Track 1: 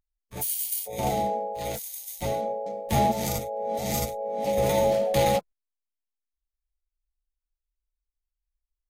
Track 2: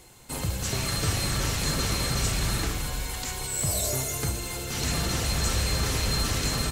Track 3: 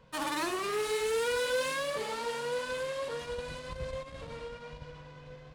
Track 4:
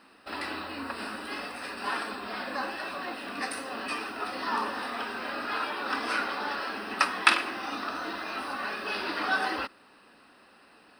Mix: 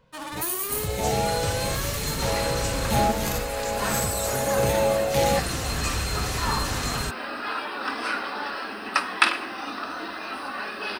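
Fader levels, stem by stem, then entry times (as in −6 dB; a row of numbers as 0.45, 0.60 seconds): 0.0, −2.0, −2.0, +1.5 decibels; 0.00, 0.40, 0.00, 1.95 seconds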